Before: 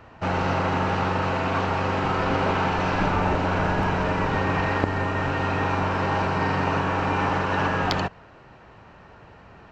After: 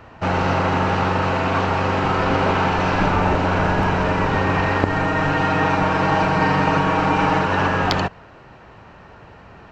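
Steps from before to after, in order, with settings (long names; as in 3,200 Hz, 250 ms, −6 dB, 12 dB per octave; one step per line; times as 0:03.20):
0:04.89–0:07.47: comb filter 6.4 ms, depth 61%
level +4.5 dB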